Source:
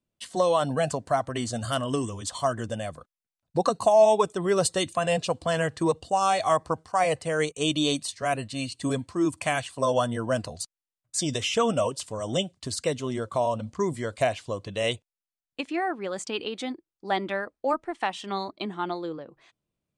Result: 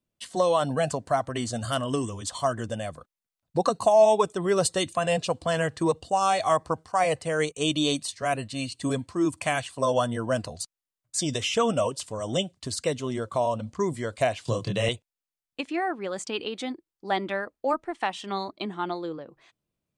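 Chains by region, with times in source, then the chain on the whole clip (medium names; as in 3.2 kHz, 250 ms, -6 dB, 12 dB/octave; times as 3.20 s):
14.45–14.89 s: peaking EQ 130 Hz +9 dB 0.81 oct + doubling 26 ms -2 dB + three bands compressed up and down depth 70%
whole clip: none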